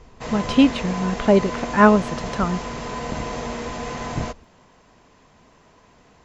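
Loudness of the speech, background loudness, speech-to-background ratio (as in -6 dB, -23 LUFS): -20.0 LUFS, -29.5 LUFS, 9.5 dB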